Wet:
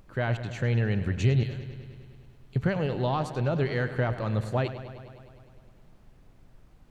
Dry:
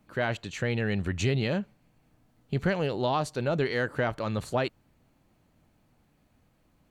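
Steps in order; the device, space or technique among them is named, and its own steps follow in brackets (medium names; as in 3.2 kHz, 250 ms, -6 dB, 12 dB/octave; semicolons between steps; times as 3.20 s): 1.43–2.56 s: differentiator; car interior (peaking EQ 120 Hz +8 dB 0.71 oct; treble shelf 3.7 kHz -6.5 dB; brown noise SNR 24 dB); bucket-brigade echo 102 ms, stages 4096, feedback 73%, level -13 dB; trim -1.5 dB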